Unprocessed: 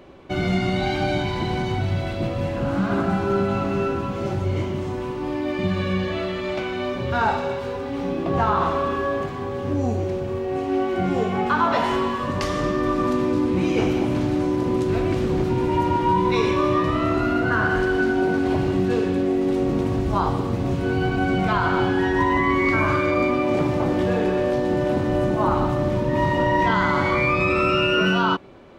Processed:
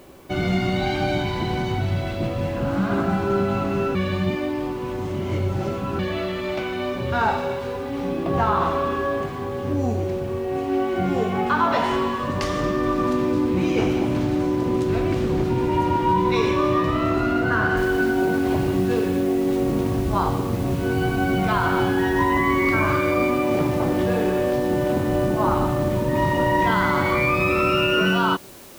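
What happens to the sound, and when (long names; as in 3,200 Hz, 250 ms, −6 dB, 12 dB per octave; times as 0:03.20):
0:03.95–0:05.99: reverse
0:17.77: noise floor change −58 dB −46 dB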